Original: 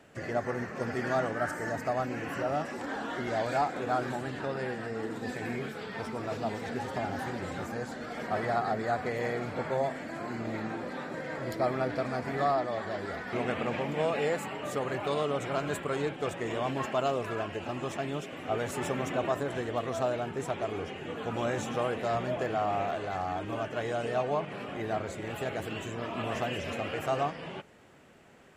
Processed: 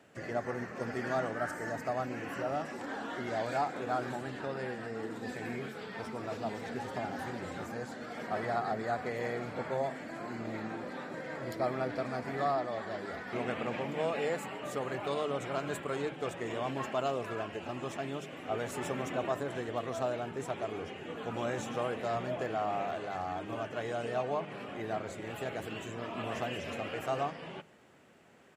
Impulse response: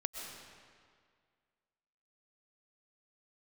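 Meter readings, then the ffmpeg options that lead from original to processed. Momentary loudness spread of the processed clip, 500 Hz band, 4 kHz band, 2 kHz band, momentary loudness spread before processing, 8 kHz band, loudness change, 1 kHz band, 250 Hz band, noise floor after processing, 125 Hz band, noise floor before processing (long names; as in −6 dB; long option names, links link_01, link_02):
7 LU, −3.5 dB, −3.5 dB, −3.5 dB, 7 LU, −3.5 dB, −3.5 dB, −3.5 dB, −3.5 dB, −46 dBFS, −5.0 dB, −42 dBFS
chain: -af "highpass=81,bandreject=frequency=50:width_type=h:width=6,bandreject=frequency=100:width_type=h:width=6,bandreject=frequency=150:width_type=h:width=6,aecho=1:1:143:0.0668,volume=-3.5dB"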